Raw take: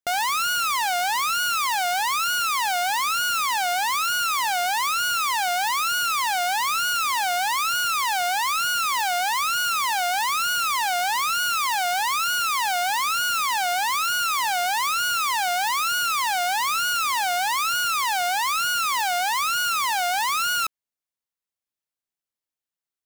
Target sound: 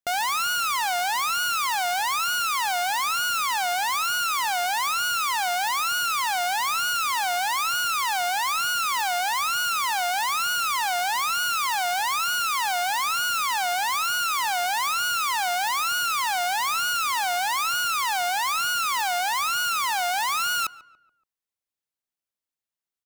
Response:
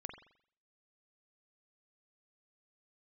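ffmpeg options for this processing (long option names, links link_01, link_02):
-filter_complex "[0:a]asplit=2[link_01][link_02];[link_02]adelay=142,lowpass=frequency=2000:poles=1,volume=-18dB,asplit=2[link_03][link_04];[link_04]adelay=142,lowpass=frequency=2000:poles=1,volume=0.45,asplit=2[link_05][link_06];[link_06]adelay=142,lowpass=frequency=2000:poles=1,volume=0.45,asplit=2[link_07][link_08];[link_08]adelay=142,lowpass=frequency=2000:poles=1,volume=0.45[link_09];[link_01][link_03][link_05][link_07][link_09]amix=inputs=5:normalize=0,volume=-1.5dB"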